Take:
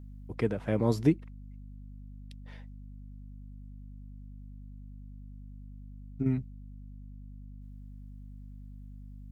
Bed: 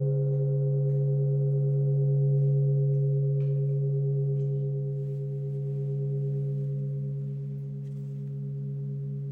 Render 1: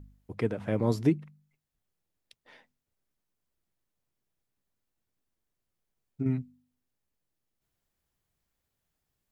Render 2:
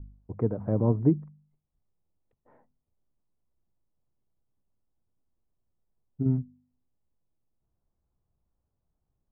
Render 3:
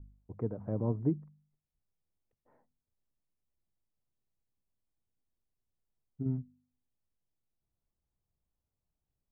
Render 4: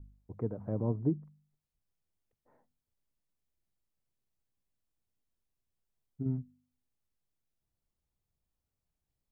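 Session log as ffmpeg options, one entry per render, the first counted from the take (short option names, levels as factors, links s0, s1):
-af "bandreject=f=50:t=h:w=4,bandreject=f=100:t=h:w=4,bandreject=f=150:t=h:w=4,bandreject=f=200:t=h:w=4,bandreject=f=250:t=h:w=4"
-af "lowpass=f=1100:w=0.5412,lowpass=f=1100:w=1.3066,lowshelf=f=150:g=8"
-af "volume=0.398"
-filter_complex "[0:a]asettb=1/sr,asplit=3[s0][s1][s2];[s0]atrim=end=0.824[s3];[s1]atrim=start=0.82:end=1.24,asetpts=PTS-STARTPTS,afade=t=in:d=0.004:c=qsin,afade=t=out:st=0.416:d=0.004:c=qsin,lowpass=1400[s4];[s2]atrim=start=1.236[s5];[s3][s4]acrossfade=d=0.004:c1=hsin:c2=qsin[s6];[s6][s5]acrossfade=d=0.004:c1=qsin:c2=hsin"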